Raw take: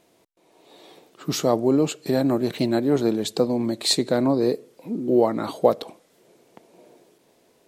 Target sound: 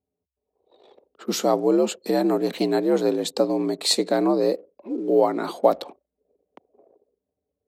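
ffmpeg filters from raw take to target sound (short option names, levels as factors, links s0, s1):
-af "anlmdn=0.0398,afreqshift=61"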